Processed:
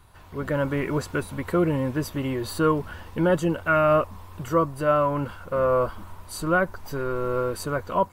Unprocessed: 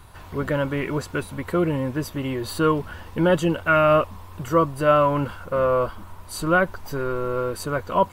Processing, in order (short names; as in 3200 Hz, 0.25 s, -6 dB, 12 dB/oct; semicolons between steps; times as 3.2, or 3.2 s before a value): dynamic EQ 3100 Hz, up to -6 dB, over -41 dBFS, Q 1.6; AGC gain up to 8 dB; gain -7.5 dB